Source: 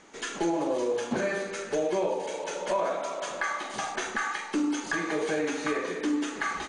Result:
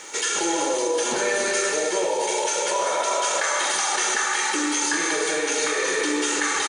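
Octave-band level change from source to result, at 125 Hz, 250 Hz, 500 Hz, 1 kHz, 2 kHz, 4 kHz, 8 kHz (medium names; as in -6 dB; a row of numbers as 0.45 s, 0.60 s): no reading, +0.5 dB, +5.0 dB, +7.5 dB, +8.5 dB, +13.5 dB, +18.0 dB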